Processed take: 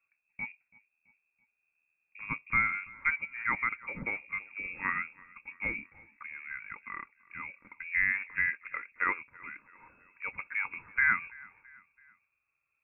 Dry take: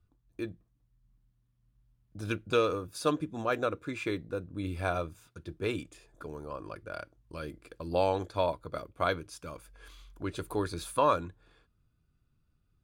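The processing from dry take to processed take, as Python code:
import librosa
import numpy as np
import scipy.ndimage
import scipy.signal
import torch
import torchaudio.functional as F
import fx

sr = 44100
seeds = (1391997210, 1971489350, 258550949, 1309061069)

y = fx.highpass(x, sr, hz=290.0, slope=6)
y = fx.echo_feedback(y, sr, ms=332, feedback_pct=49, wet_db=-23.5)
y = fx.freq_invert(y, sr, carrier_hz=2600)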